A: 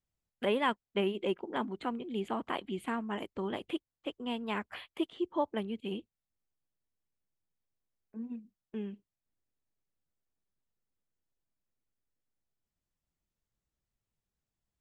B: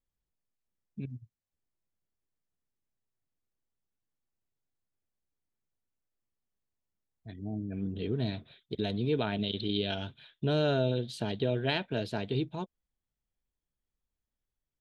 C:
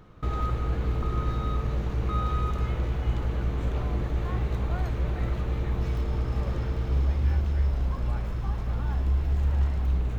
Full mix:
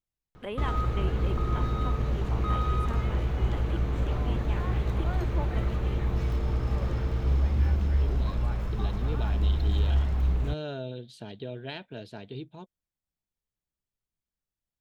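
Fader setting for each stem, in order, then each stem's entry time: −6.5, −8.0, 0.0 decibels; 0.00, 0.00, 0.35 seconds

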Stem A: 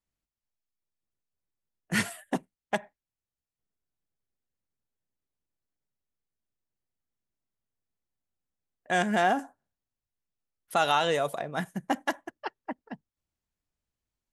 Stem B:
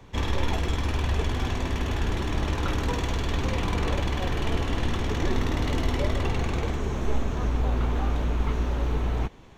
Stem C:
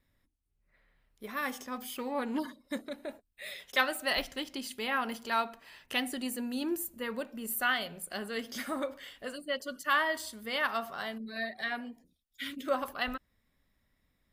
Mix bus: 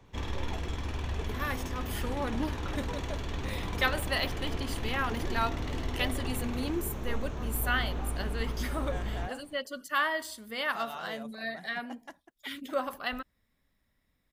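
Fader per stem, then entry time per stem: −18.0, −8.5, −0.5 decibels; 0.00, 0.00, 0.05 seconds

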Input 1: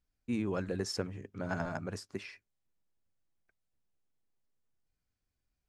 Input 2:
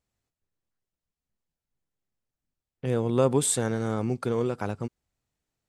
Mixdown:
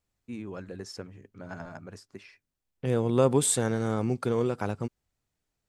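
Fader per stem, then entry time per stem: −5.0, 0.0 decibels; 0.00, 0.00 seconds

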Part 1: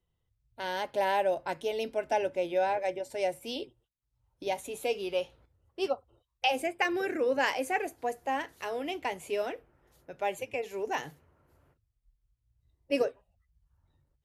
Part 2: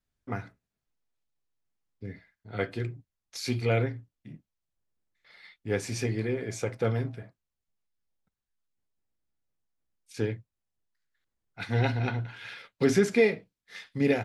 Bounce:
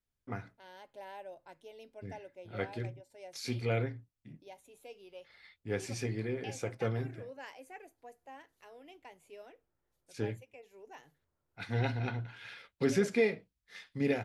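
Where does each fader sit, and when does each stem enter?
−19.5, −6.0 decibels; 0.00, 0.00 seconds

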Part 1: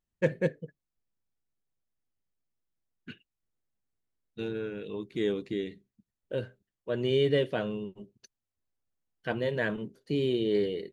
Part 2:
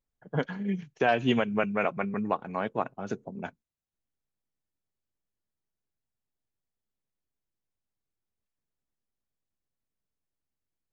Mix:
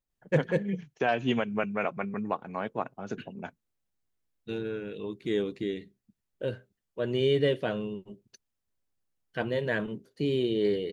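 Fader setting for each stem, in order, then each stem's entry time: +0.5, −2.5 decibels; 0.10, 0.00 seconds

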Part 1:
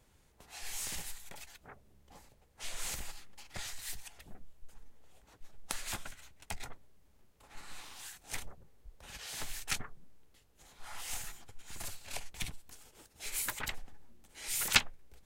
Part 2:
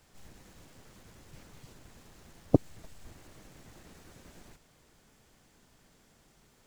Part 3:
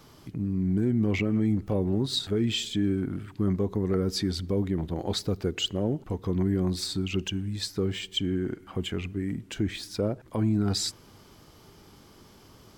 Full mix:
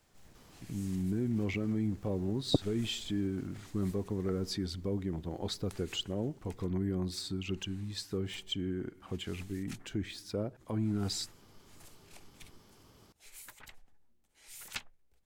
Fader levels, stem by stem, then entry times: −14.5, −5.5, −7.5 decibels; 0.00, 0.00, 0.35 seconds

